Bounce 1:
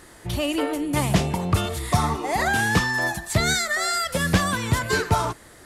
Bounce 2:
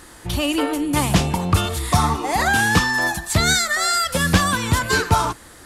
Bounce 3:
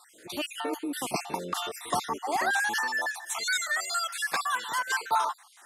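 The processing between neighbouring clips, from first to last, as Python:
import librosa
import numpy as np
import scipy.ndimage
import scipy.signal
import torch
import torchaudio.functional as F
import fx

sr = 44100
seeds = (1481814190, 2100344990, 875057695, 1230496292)

y1 = fx.graphic_eq_31(x, sr, hz=(125, 200, 400, 630, 2000), db=(-7, -3, -6, -6, -4))
y1 = F.gain(torch.from_numpy(y1), 5.5).numpy()
y2 = fx.spec_dropout(y1, sr, seeds[0], share_pct=49)
y2 = fx.filter_sweep_highpass(y2, sr, from_hz=360.0, to_hz=820.0, start_s=2.62, end_s=3.14, q=1.3)
y2 = F.gain(torch.from_numpy(y2), -8.0).numpy()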